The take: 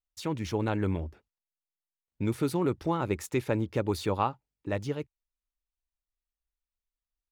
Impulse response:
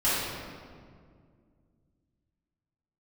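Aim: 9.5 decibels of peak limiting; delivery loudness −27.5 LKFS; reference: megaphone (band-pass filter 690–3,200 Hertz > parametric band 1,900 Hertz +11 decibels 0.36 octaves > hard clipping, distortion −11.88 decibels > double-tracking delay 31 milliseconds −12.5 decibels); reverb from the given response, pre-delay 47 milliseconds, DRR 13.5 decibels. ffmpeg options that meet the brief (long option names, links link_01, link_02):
-filter_complex "[0:a]alimiter=limit=-22.5dB:level=0:latency=1,asplit=2[link_01][link_02];[1:a]atrim=start_sample=2205,adelay=47[link_03];[link_02][link_03]afir=irnorm=-1:irlink=0,volume=-27dB[link_04];[link_01][link_04]amix=inputs=2:normalize=0,highpass=690,lowpass=3200,equalizer=frequency=1900:width_type=o:width=0.36:gain=11,asoftclip=type=hard:threshold=-31.5dB,asplit=2[link_05][link_06];[link_06]adelay=31,volume=-12.5dB[link_07];[link_05][link_07]amix=inputs=2:normalize=0,volume=14dB"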